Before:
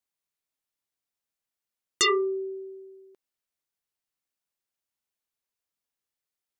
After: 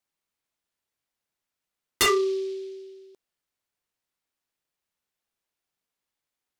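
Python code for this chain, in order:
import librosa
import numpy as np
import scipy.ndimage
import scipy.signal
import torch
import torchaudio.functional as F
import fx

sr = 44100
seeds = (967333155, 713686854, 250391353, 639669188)

p1 = 10.0 ** (-26.0 / 20.0) * np.tanh(x / 10.0 ** (-26.0 / 20.0))
p2 = x + (p1 * 10.0 ** (-7.0 / 20.0))
y = fx.noise_mod_delay(p2, sr, seeds[0], noise_hz=3700.0, depth_ms=0.031)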